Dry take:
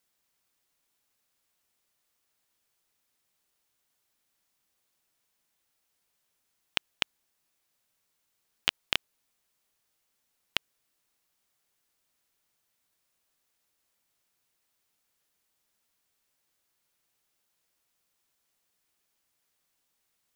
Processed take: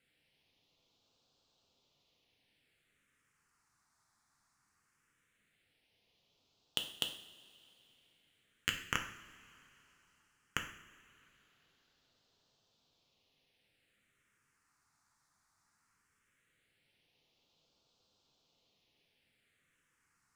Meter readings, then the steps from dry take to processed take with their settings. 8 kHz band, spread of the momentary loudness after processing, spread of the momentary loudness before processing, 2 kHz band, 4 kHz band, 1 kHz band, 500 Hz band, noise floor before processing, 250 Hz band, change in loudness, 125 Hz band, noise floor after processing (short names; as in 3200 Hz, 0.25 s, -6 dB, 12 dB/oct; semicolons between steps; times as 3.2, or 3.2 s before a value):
0.0 dB, 20 LU, 3 LU, -5.0 dB, -7.0 dB, -2.5 dB, -5.5 dB, -78 dBFS, -1.0 dB, -6.5 dB, +2.0 dB, -79 dBFS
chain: low shelf 210 Hz -4 dB; phaser stages 4, 0.18 Hz, lowest notch 490–1900 Hz; air absorption 89 m; soft clip -27 dBFS, distortion -6 dB; two-slope reverb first 0.6 s, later 3.4 s, from -18 dB, DRR 3.5 dB; gain +9 dB